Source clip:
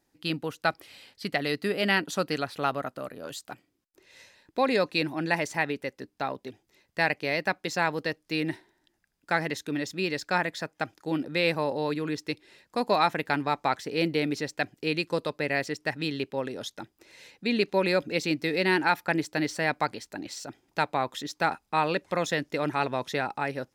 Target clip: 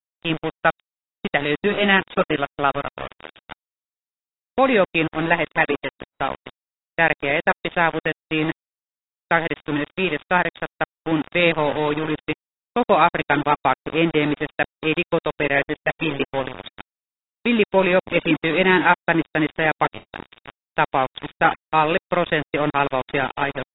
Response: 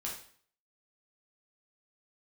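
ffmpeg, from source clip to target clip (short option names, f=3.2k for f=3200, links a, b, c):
-af "aeval=exprs='val(0)*gte(abs(val(0)),0.0299)':c=same,volume=8dB" -ar 16000 -c:a aac -b:a 16k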